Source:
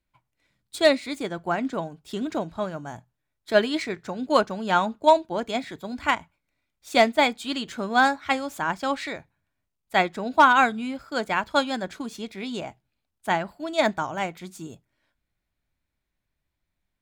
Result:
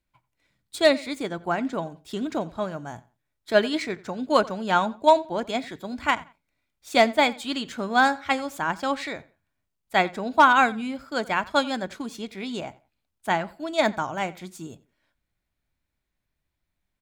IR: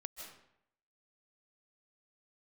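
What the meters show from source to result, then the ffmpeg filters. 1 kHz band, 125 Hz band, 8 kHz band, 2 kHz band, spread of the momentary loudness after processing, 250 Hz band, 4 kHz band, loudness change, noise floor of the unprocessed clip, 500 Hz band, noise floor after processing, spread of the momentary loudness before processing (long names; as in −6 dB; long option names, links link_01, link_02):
0.0 dB, 0.0 dB, 0.0 dB, 0.0 dB, 15 LU, 0.0 dB, 0.0 dB, 0.0 dB, −81 dBFS, 0.0 dB, −80 dBFS, 15 LU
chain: -filter_complex "[0:a]asplit=2[link_01][link_02];[link_02]adelay=88,lowpass=frequency=4500:poles=1,volume=-20.5dB,asplit=2[link_03][link_04];[link_04]adelay=88,lowpass=frequency=4500:poles=1,volume=0.25[link_05];[link_01][link_03][link_05]amix=inputs=3:normalize=0"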